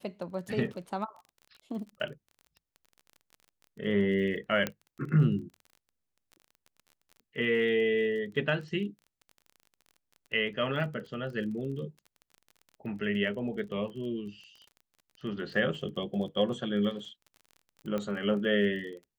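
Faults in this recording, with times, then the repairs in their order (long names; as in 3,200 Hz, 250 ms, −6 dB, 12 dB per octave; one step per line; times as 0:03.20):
surface crackle 27 per second −41 dBFS
0:04.67: click −15 dBFS
0:17.98: click −21 dBFS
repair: click removal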